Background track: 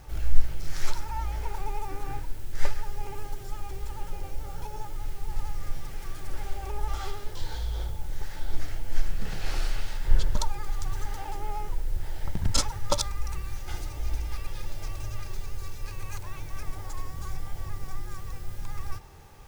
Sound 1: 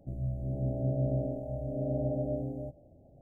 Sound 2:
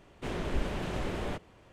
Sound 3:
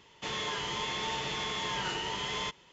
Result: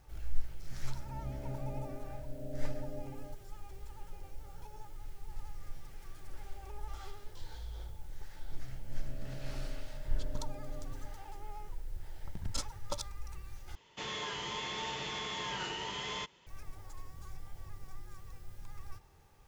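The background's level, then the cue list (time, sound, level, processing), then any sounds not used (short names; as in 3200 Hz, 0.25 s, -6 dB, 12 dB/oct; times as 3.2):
background track -12.5 dB
0.64 add 1 -11.5 dB
8.44 add 1 -16.5 dB
13.75 replace with 3 -4.5 dB
not used: 2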